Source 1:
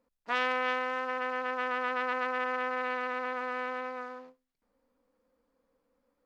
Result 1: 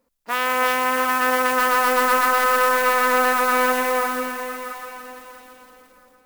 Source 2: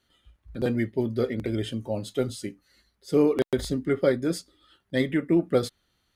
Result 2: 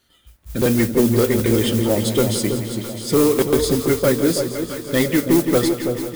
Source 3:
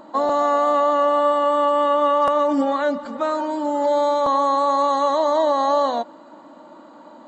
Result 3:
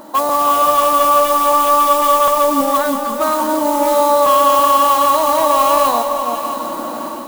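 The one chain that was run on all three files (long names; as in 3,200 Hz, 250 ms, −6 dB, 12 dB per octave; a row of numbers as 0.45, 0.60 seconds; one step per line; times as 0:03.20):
in parallel at +2.5 dB: downward compressor, threshold −32 dBFS
on the sum: dynamic equaliser 1,100 Hz, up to +8 dB, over −34 dBFS, Q 3.9
noise that follows the level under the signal 18 dB
high-shelf EQ 6,000 Hz +7 dB
automatic gain control gain up to 11 dB
hard clipping −8.5 dBFS
on a send: delay that swaps between a low-pass and a high-pass 329 ms, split 970 Hz, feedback 57%, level −6 dB
on the sum: feedback echo at a low word length 169 ms, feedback 80%, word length 7 bits, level −12 dB
level −1.5 dB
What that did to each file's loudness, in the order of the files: +13.5, +8.5, +6.0 LU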